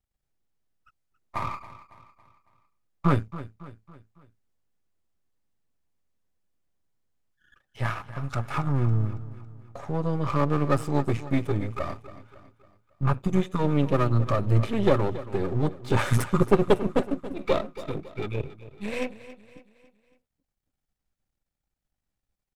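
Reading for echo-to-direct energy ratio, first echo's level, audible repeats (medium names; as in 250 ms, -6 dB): -14.5 dB, -15.5 dB, 3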